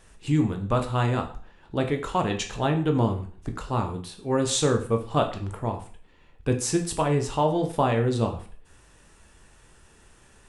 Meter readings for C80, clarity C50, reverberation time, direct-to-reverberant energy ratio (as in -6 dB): 15.0 dB, 10.5 dB, 0.45 s, 4.0 dB